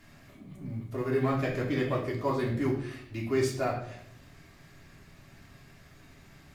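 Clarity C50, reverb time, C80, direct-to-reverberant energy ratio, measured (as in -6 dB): 6.0 dB, 0.70 s, 9.5 dB, -3.5 dB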